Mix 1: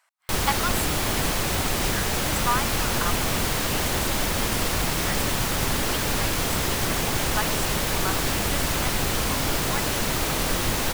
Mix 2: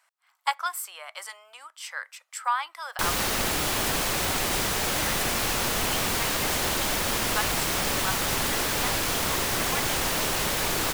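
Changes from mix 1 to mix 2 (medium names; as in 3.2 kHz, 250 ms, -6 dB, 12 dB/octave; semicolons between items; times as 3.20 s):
background: entry +2.70 s; master: add bass shelf 270 Hz -8 dB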